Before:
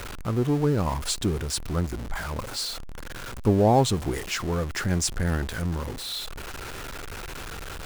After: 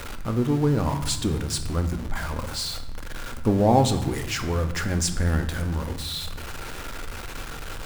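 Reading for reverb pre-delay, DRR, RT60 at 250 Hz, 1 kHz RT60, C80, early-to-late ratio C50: 3 ms, 7.0 dB, 1.6 s, 0.95 s, 12.5 dB, 10.5 dB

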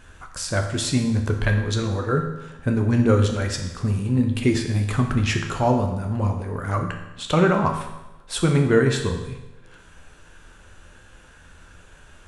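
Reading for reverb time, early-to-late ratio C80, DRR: 1.0 s, 9.0 dB, 3.5 dB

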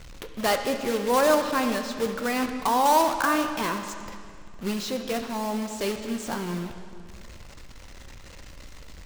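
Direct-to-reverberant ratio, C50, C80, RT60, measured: 6.0 dB, 7.5 dB, 8.5 dB, 2.3 s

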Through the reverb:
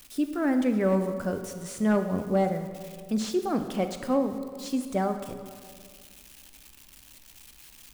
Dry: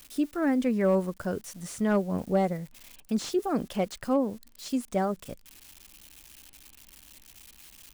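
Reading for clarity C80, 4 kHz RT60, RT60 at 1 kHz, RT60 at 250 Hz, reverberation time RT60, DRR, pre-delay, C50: 9.5 dB, 1.3 s, 1.9 s, 2.2 s, 2.0 s, 7.0 dB, 18 ms, 8.5 dB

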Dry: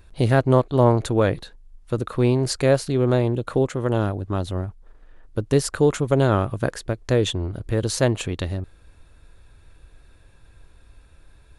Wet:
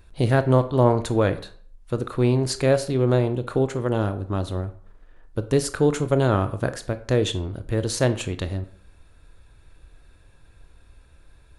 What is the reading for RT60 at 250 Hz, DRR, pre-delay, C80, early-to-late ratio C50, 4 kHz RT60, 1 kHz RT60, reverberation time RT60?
0.50 s, 10.5 dB, 20 ms, 18.5 dB, 15.0 dB, 0.35 s, 0.60 s, 0.55 s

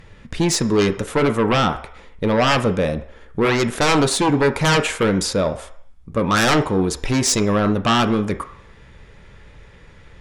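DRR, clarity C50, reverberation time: 7.0 dB, 13.0 dB, 0.60 s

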